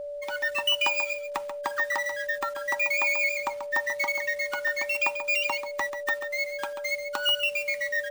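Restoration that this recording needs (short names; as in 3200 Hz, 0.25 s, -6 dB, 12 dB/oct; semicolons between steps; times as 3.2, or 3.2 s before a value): notch 580 Hz, Q 30; inverse comb 0.137 s -9.5 dB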